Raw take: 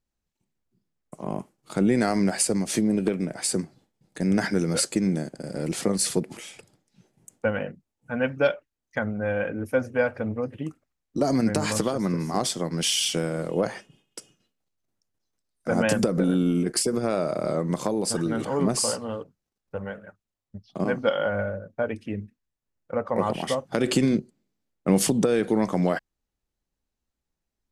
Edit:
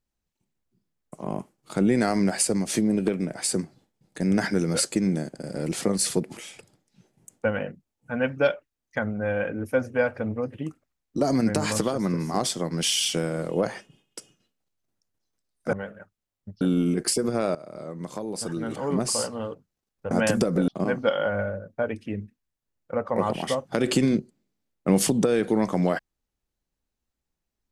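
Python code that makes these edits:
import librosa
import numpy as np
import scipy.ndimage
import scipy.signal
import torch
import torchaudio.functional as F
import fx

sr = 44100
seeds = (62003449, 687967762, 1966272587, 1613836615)

y = fx.edit(x, sr, fx.swap(start_s=15.73, length_s=0.57, other_s=19.8, other_length_s=0.88),
    fx.fade_in_from(start_s=17.24, length_s=1.85, floor_db=-17.0), tone=tone)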